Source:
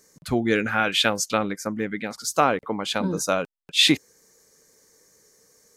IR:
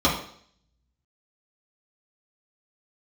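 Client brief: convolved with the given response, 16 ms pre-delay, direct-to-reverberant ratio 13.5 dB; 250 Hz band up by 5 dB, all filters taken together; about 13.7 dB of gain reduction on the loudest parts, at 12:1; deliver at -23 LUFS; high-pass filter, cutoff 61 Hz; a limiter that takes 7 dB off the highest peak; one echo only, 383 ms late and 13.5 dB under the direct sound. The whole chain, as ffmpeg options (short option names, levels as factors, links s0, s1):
-filter_complex "[0:a]highpass=61,equalizer=f=250:t=o:g=6.5,acompressor=threshold=0.0631:ratio=12,alimiter=limit=0.106:level=0:latency=1,aecho=1:1:383:0.211,asplit=2[s0][s1];[1:a]atrim=start_sample=2205,adelay=16[s2];[s1][s2]afir=irnorm=-1:irlink=0,volume=0.0282[s3];[s0][s3]amix=inputs=2:normalize=0,volume=2.37"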